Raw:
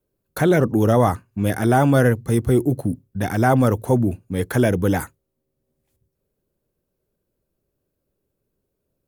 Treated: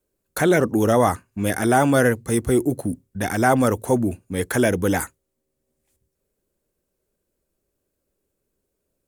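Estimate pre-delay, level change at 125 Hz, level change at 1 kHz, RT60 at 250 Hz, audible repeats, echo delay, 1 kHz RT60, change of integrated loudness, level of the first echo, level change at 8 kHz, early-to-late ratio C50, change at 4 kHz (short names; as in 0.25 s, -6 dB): none, -6.0 dB, +0.5 dB, none, none, none, none, -1.0 dB, none, +6.0 dB, none, +2.5 dB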